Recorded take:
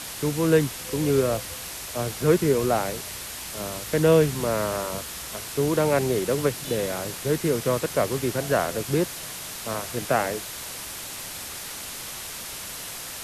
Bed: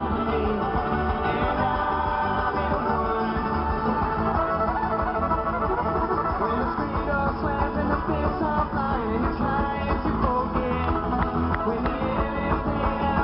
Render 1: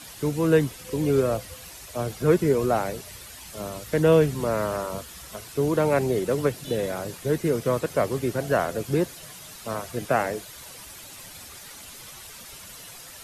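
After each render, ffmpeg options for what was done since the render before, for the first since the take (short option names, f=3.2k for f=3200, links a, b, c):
-af "afftdn=nr=10:nf=-36"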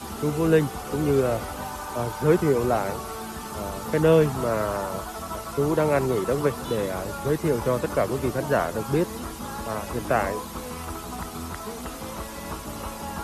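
-filter_complex "[1:a]volume=-10.5dB[a];[0:a][a]amix=inputs=2:normalize=0"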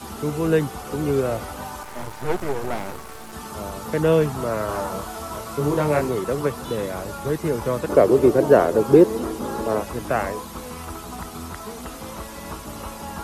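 -filter_complex "[0:a]asettb=1/sr,asplit=3[a][b][c];[a]atrim=end=1.834[d];[b]atrim=start=1.83:end=3.33,asetpts=PTS-STARTPTS,afade=t=in:d=0.004:c=qsin,afade=t=out:st=1.496:d=0.004:c=qsin,aeval=exprs='max(val(0),0)':c=same[e];[c]atrim=start=3.326[f];[d][e]acrossfade=d=0.004:c1=hsin:c2=qsin[g];[g][f]acrossfade=d=0.004:c1=qsin:c2=hsin,asettb=1/sr,asplit=3[h][i][j];[h]atrim=end=4.664[k];[i]atrim=start=4.66:end=6.09,asetpts=PTS-STARTPTS,afade=t=in:d=0.004:c=qsin,afade=t=out:st=1.426:d=0.004:c=qsin,asplit=2[l][m];[m]adelay=27,volume=-3dB[n];[l][n]amix=inputs=2:normalize=0,atrim=end_sample=63063[o];[j]atrim=start=6.086[p];[k][o]acrossfade=d=0.004:c1=hsin:c2=qsin[q];[q][p]acrossfade=d=0.004:c1=qsin:c2=hsin,asettb=1/sr,asplit=3[r][s][t];[r]atrim=end=7.894[u];[s]atrim=start=7.89:end=9.83,asetpts=PTS-STARTPTS,afade=t=in:d=0.004:c=qsin,afade=t=out:st=1.936:d=0.004:c=qsin,equalizer=f=400:t=o:w=1.5:g=13.5[v];[t]atrim=start=9.826[w];[u][v]acrossfade=d=0.004:c1=hsin:c2=qsin[x];[x][w]acrossfade=d=0.004:c1=qsin:c2=hsin"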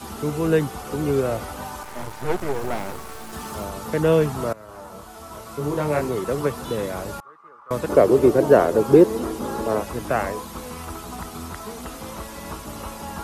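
-filter_complex "[0:a]asettb=1/sr,asplit=3[a][b][c];[a]atrim=end=2.544[d];[b]atrim=start=2.54:end=3.65,asetpts=PTS-STARTPTS,afade=t=in:d=0.004:c=qsin,afade=t=out:st=1.106:d=0.004:c=qsin,aeval=exprs='val(0)+0.5*0.01*sgn(val(0))':c=same[e];[c]atrim=start=3.646[f];[d][e]acrossfade=d=0.004:c1=hsin:c2=qsin[g];[g][f]acrossfade=d=0.004:c1=qsin:c2=hsin,asettb=1/sr,asplit=3[h][i][j];[h]atrim=end=7.204[k];[i]atrim=start=7.2:end=7.71,asetpts=PTS-STARTPTS,afade=t=in:d=0.004:c=qsin,afade=t=out:st=0.506:d=0.004:c=qsin,bandpass=f=1.2k:t=q:w=13[l];[j]atrim=start=7.706[m];[k][l]acrossfade=d=0.004:c1=hsin:c2=qsin[n];[n][m]acrossfade=d=0.004:c1=qsin:c2=hsin,asplit=2[o][p];[o]atrim=end=4.53,asetpts=PTS-STARTPTS,afade=t=out:st=4.526:d=0.004:c=hsin:silence=0.0944061[q];[p]atrim=start=4.53,asetpts=PTS-STARTPTS,afade=t=in:d=1.86:silence=0.0944061[r];[q][r]concat=n=2:v=0:a=1"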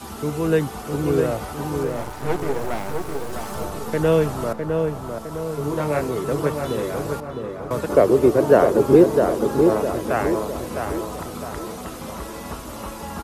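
-filter_complex "[0:a]asplit=2[a][b];[b]adelay=658,lowpass=f=1.7k:p=1,volume=-4.5dB,asplit=2[c][d];[d]adelay=658,lowpass=f=1.7k:p=1,volume=0.49,asplit=2[e][f];[f]adelay=658,lowpass=f=1.7k:p=1,volume=0.49,asplit=2[g][h];[h]adelay=658,lowpass=f=1.7k:p=1,volume=0.49,asplit=2[i][j];[j]adelay=658,lowpass=f=1.7k:p=1,volume=0.49,asplit=2[k][l];[l]adelay=658,lowpass=f=1.7k:p=1,volume=0.49[m];[a][c][e][g][i][k][m]amix=inputs=7:normalize=0"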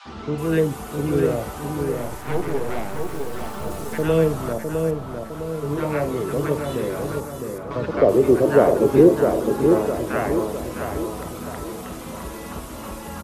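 -filter_complex "[0:a]asplit=2[a][b];[b]adelay=49,volume=-14dB[c];[a][c]amix=inputs=2:normalize=0,acrossover=split=910|5000[d][e][f];[d]adelay=50[g];[f]adelay=380[h];[g][e][h]amix=inputs=3:normalize=0"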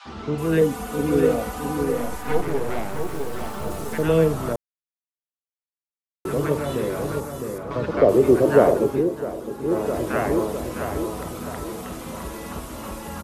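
-filter_complex "[0:a]asettb=1/sr,asplit=3[a][b][c];[a]atrim=end=0.614[d];[b]atrim=start=0.61:end=2.41,asetpts=PTS-STARTPTS,afade=t=in:d=0.004:c=qsin,afade=t=out:st=1.796:d=0.004:c=qsin,aecho=1:1:4.1:0.65,atrim=end_sample=79380[e];[c]atrim=start=2.406[f];[d][e]acrossfade=d=0.004:c1=hsin:c2=qsin[g];[g][f]acrossfade=d=0.004:c1=qsin:c2=hsin,asplit=5[h][i][j][k][l];[h]atrim=end=4.56,asetpts=PTS-STARTPTS,afade=t=out:st=4.556:d=0.004:c=hsin[m];[i]atrim=start=4.56:end=6.25,asetpts=PTS-STARTPTS,volume=0[n];[j]atrim=start=6.25:end=9.03,asetpts=PTS-STARTPTS,afade=t=in:d=0.004:c=hsin,afade=t=out:st=2.44:d=0.34:silence=0.316228[o];[k]atrim=start=9.03:end=9.63,asetpts=PTS-STARTPTS,volume=-10dB[p];[l]atrim=start=9.63,asetpts=PTS-STARTPTS,afade=t=in:d=0.34:silence=0.316228[q];[m][n][o][p][q]concat=n=5:v=0:a=1"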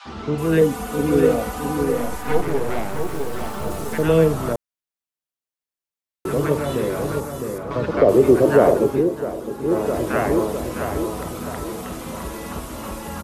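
-af "volume=2.5dB,alimiter=limit=-3dB:level=0:latency=1"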